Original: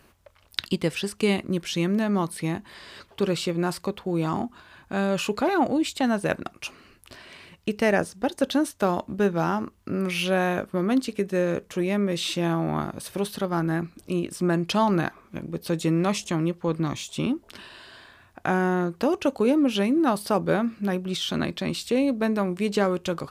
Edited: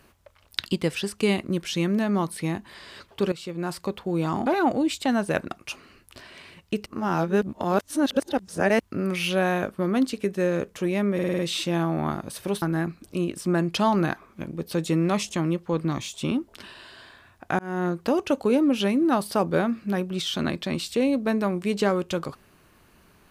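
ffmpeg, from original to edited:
-filter_complex "[0:a]asplit=12[a][b][c][d][e][f][g][h][i][j][k][l];[a]atrim=end=3.32,asetpts=PTS-STARTPTS,afade=t=out:st=3.316:d=0.004:c=hsin:silence=0.199526[m];[b]atrim=start=3.32:end=4.462,asetpts=PTS-STARTPTS,afade=t=in:d=0.61:silence=0.199526[n];[c]atrim=start=5.408:end=7.812[o];[d]atrim=start=7.808:end=9.752,asetpts=PTS-STARTPTS,areverse[p];[e]atrim=start=9.748:end=12.142[q];[f]atrim=start=12.088:end=12.142[r];[g]atrim=start=12.088:end=12.142[s];[h]atrim=start=12.088:end=12.142[t];[i]atrim=start=12.088:end=12.142[u];[j]atrim=start=12.088:end=13.322[v];[k]atrim=start=13.568:end=18.54,asetpts=PTS-STARTPTS,afade=t=out:st=4.968:d=0.004:c=hsin[w];[l]atrim=start=18.54,asetpts=PTS-STARTPTS,afade=t=in:d=0.28[x];[m][n]concat=n=2:v=0:a=1[y];[y][o]acrossfade=d=0.004:c1=hsin:c2=hsin[z];[z][p]acrossfade=d=0.004:c1=hsin:c2=hsin[aa];[aa][q]acrossfade=d=0.004:c1=hsin:c2=hsin[ab];[ab][r]acrossfade=d=0.004:c1=hsin:c2=hsin[ac];[ac][s]acrossfade=d=0.004:c1=hsin:c2=hsin[ad];[ad][t]acrossfade=d=0.004:c1=hsin:c2=hsin[ae];[ae][u]acrossfade=d=0.004:c1=hsin:c2=hsin[af];[af][v]acrossfade=d=0.004:c1=hsin:c2=hsin[ag];[w][x]concat=n=2:v=0:a=1[ah];[ag][ah]acrossfade=d=0.004:c1=hsin:c2=hsin"

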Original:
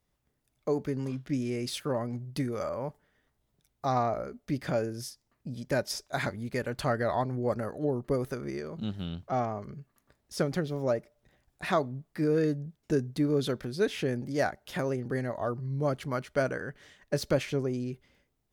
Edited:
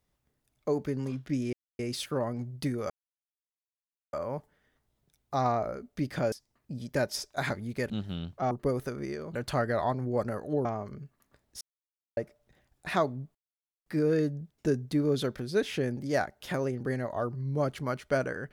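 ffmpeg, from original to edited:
-filter_complex "[0:a]asplit=11[a][b][c][d][e][f][g][h][i][j][k];[a]atrim=end=1.53,asetpts=PTS-STARTPTS,afade=t=out:st=1.526:d=0.004:c=hsin,apad=pad_dur=0.26[l];[b]atrim=start=1.53:end=2.64,asetpts=PTS-STARTPTS,afade=t=in:d=0.004:c=hsin,afade=t=out:st=1.106:d=0.004:c=hsin,apad=pad_dur=1.23[m];[c]atrim=start=2.64:end=4.832,asetpts=PTS-STARTPTS,afade=t=in:d=0.004:c=hsin[n];[d]atrim=start=5.078:end=6.662[o];[e]atrim=start=8.798:end=9.412[p];[f]atrim=start=7.958:end=8.802[q];[g]atrim=start=6.658:end=7.962[r];[h]atrim=start=9.408:end=10.37,asetpts=PTS-STARTPTS,afade=t=out:st=0.958:d=0.004:c=hsin[s];[i]atrim=start=10.37:end=10.93,asetpts=PTS-STARTPTS,volume=0[t];[j]atrim=start=10.93:end=12.11,asetpts=PTS-STARTPTS,afade=t=in:d=0.004:c=hsin,afade=t=out:st=1.176:d=0.004:c=hsin,apad=pad_dur=0.51[u];[k]atrim=start=12.11,asetpts=PTS-STARTPTS,afade=t=in:d=0.004:c=hsin[v];[l][m][n]concat=n=3:v=0:a=1[w];[w][o]acrossfade=d=0.004:c1=hsin:c2=hsin[x];[x][p]acrossfade=d=0.004:c1=hsin:c2=hsin[y];[y][q]acrossfade=d=0.004:c1=hsin:c2=hsin[z];[z][r]acrossfade=d=0.004:c1=hsin:c2=hsin[aa];[s][t][u][v]concat=n=4:v=0:a=1[ab];[aa][ab]acrossfade=d=0.004:c1=hsin:c2=hsin"

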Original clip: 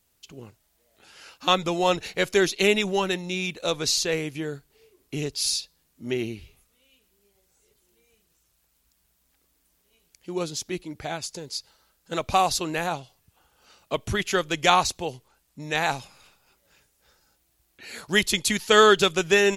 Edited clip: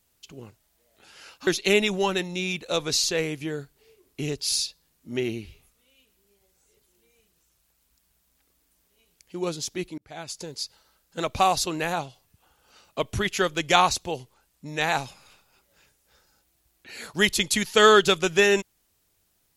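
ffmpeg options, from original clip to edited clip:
-filter_complex "[0:a]asplit=3[a][b][c];[a]atrim=end=1.472[d];[b]atrim=start=2.408:end=10.92,asetpts=PTS-STARTPTS,afade=t=out:st=8.508:d=0.004:c=hsin[e];[c]atrim=start=10.92,asetpts=PTS-STARTPTS,afade=t=in:d=0.44[f];[e][f]concat=n=2:v=0:a=1[g];[d][g]acrossfade=d=0.004:c1=hsin:c2=hsin"

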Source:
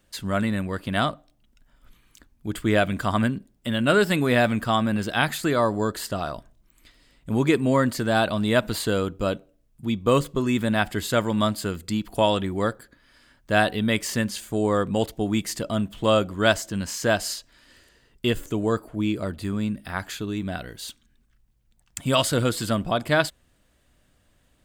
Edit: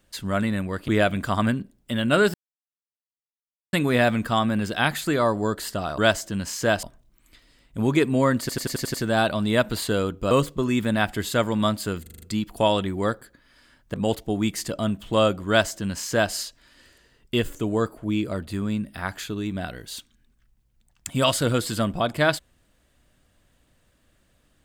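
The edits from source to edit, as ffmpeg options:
-filter_complex "[0:a]asplit=18[a][b][c][d][e][f][g][h][i][j][k][l][m][n][o][p][q][r];[a]atrim=end=0.882[s];[b]atrim=start=2.638:end=4.1,asetpts=PTS-STARTPTS,afade=t=out:st=1.458:d=0.004:c=hsin,apad=pad_dur=1.39[t];[c]atrim=start=4.1:end=6.352,asetpts=PTS-STARTPTS,afade=t=in:d=0.004:c=hsin[u];[d]atrim=start=16.388:end=17.242[v];[e]atrim=start=6.348:end=8.012[w];[f]atrim=start=7.918:end=8.012[x];[g]atrim=start=7.918:end=8.012[y];[h]atrim=start=7.918:end=8.012[z];[i]atrim=start=7.918:end=8.012[aa];[j]atrim=start=7.918:end=8.012[ab];[k]atrim=start=7.918:end=9.292[ac];[l]atrim=start=10.088:end=11.842[ad];[m]atrim=start=11.798:end=11.842[ae];[n]atrim=start=11.798:end=11.842[af];[o]atrim=start=11.798:end=11.842[ag];[p]atrim=start=11.798:end=11.842[ah];[q]atrim=start=11.798:end=13.522[ai];[r]atrim=start=14.848[aj];[t][u]concat=n=2:v=0:a=1[ak];[s][ak]acrossfade=d=0.004:c1=hsin:c2=hsin[al];[al][v]acrossfade=d=0.004:c1=hsin:c2=hsin[am];[am][w]acrossfade=d=0.004:c1=hsin:c2=hsin[an];[an][x]acrossfade=d=0.004:c1=hsin:c2=hsin[ao];[ao][y]acrossfade=d=0.004:c1=hsin:c2=hsin[ap];[ap][z]acrossfade=d=0.004:c1=hsin:c2=hsin[aq];[aq][aa]acrossfade=d=0.004:c1=hsin:c2=hsin[ar];[ar][ab]acrossfade=d=0.004:c1=hsin:c2=hsin[as];[as][ac]acrossfade=d=0.004:c1=hsin:c2=hsin[at];[at][ad]acrossfade=d=0.004:c1=hsin:c2=hsin[au];[au][ae]acrossfade=d=0.004:c1=hsin:c2=hsin[av];[av][af]acrossfade=d=0.004:c1=hsin:c2=hsin[aw];[aw][ag]acrossfade=d=0.004:c1=hsin:c2=hsin[ax];[ax][ah]acrossfade=d=0.004:c1=hsin:c2=hsin[ay];[ay][ai]acrossfade=d=0.004:c1=hsin:c2=hsin[az];[az][aj]acrossfade=d=0.004:c1=hsin:c2=hsin"

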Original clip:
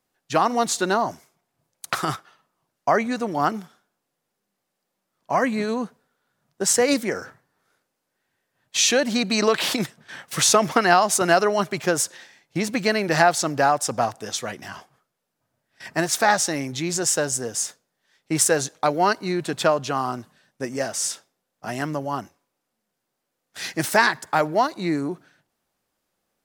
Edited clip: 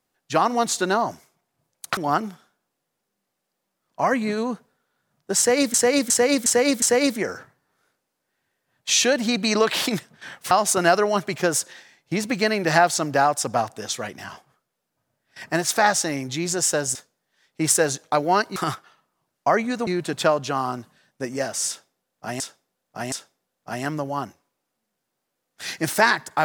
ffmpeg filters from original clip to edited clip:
-filter_complex "[0:a]asplit=12[a][b][c][d][e][f][g][h][i][j][k][l];[a]atrim=end=1.972[m];[b]atrim=start=3.278:end=7.052[n];[c]atrim=start=6.688:end=7.052[o];[d]atrim=start=6.688:end=7.052[p];[e]atrim=start=6.688:end=7.052[q];[f]atrim=start=6.688:end=10.382[r];[g]atrim=start=10.948:end=17.392[s];[h]atrim=start=17.658:end=19.272[t];[i]atrim=start=1.968:end=3.282[u];[j]atrim=start=19.268:end=21.802[v];[k]atrim=start=21.078:end=21.802[w];[l]atrim=start=21.078[x];[m][n]acrossfade=d=0.004:c1=hsin:c2=hsin[y];[y][o]acrossfade=d=0.004:c1=hsin:c2=hsin[z];[z][p]acrossfade=d=0.004:c1=hsin:c2=hsin[aa];[aa][q]acrossfade=d=0.004:c1=hsin:c2=hsin[ab];[ab][r]acrossfade=d=0.004:c1=hsin:c2=hsin[ac];[ac][s]acrossfade=d=0.004:c1=hsin:c2=hsin[ad];[ad][t]acrossfade=d=0.004:c1=hsin:c2=hsin[ae];[ae][u]acrossfade=d=0.004:c1=hsin:c2=hsin[af];[af][v]acrossfade=d=0.004:c1=hsin:c2=hsin[ag];[ag][w]acrossfade=d=0.004:c1=hsin:c2=hsin[ah];[ah][x]acrossfade=d=0.004:c1=hsin:c2=hsin"

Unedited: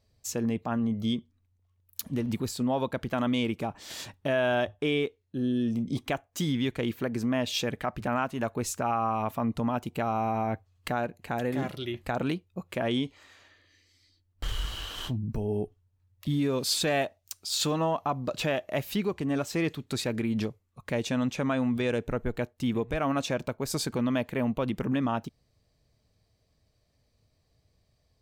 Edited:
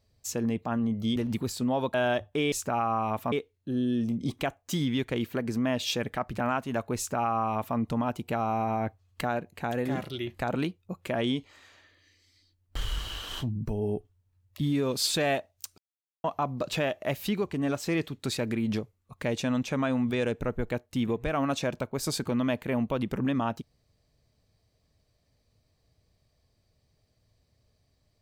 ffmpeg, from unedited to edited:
-filter_complex "[0:a]asplit=7[a][b][c][d][e][f][g];[a]atrim=end=1.162[h];[b]atrim=start=2.148:end=2.932[i];[c]atrim=start=4.408:end=4.992[j];[d]atrim=start=8.638:end=9.442[k];[e]atrim=start=4.988:end=17.45,asetpts=PTS-STARTPTS,afade=t=out:st=12.458:d=0.004:c=hsin[l];[f]atrim=start=17.45:end=17.91,asetpts=PTS-STARTPTS,volume=0[m];[g]atrim=start=17.91,asetpts=PTS-STARTPTS,afade=t=in:d=0.004:c=hsin[n];[h][i]acrossfade=d=0.004:c1=hsin:c2=hsin[o];[o][j]acrossfade=d=0.004:c1=hsin:c2=hsin[p];[p][k]acrossfade=d=0.004:c1=hsin:c2=hsin[q];[l][m][n]concat=n=3:v=0:a=1[r];[q][r]acrossfade=d=0.004:c1=hsin:c2=hsin"

